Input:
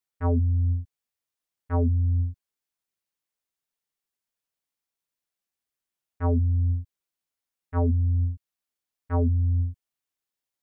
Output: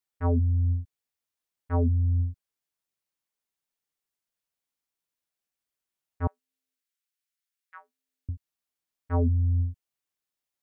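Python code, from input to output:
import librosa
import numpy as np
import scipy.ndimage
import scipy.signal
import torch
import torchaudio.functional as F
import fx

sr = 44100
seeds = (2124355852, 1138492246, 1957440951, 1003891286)

y = fx.highpass(x, sr, hz=1400.0, slope=24, at=(6.27, 8.29))
y = y * 10.0 ** (-1.0 / 20.0)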